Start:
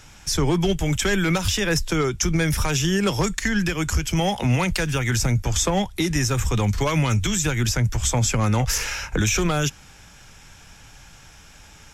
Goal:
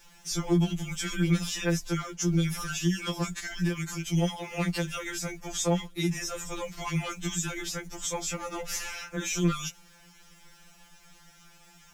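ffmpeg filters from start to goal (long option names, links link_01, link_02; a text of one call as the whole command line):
ffmpeg -i in.wav -af "acrusher=bits=7:mix=0:aa=0.5,afftfilt=real='re*2.83*eq(mod(b,8),0)':imag='im*2.83*eq(mod(b,8),0)':win_size=2048:overlap=0.75,volume=-6.5dB" out.wav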